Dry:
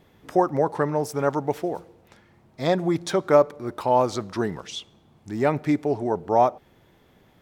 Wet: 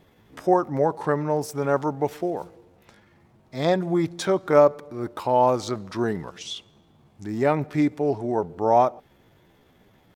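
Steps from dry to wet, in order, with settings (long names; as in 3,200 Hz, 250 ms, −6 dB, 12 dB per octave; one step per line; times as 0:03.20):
tempo change 0.73×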